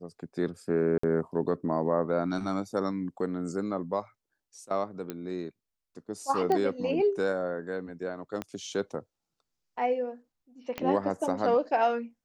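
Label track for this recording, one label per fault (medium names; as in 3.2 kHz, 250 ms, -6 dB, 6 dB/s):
0.980000	1.030000	dropout 54 ms
5.100000	5.100000	pop -21 dBFS
6.520000	6.520000	pop -17 dBFS
8.420000	8.420000	pop -20 dBFS
10.780000	10.780000	pop -18 dBFS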